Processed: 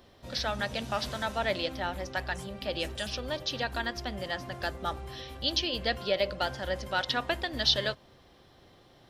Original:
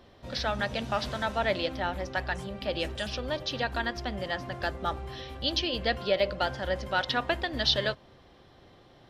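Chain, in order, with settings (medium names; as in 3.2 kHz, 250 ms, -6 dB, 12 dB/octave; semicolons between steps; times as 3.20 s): treble shelf 6.2 kHz +11 dB; trim -2.5 dB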